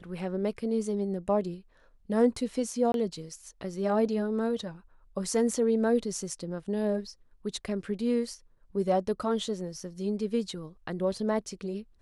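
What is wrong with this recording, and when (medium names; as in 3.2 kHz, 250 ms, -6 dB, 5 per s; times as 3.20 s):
2.92–2.94 s: dropout 22 ms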